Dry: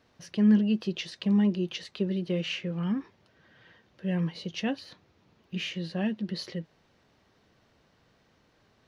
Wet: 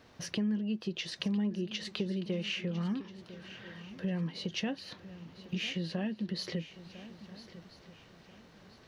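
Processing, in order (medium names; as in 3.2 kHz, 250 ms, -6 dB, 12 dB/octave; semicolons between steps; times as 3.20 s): compression 4:1, threshold -40 dBFS, peak gain reduction 18.5 dB; on a send: shuffle delay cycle 1335 ms, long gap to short 3:1, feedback 31%, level -15.5 dB; on the sum: trim +6.5 dB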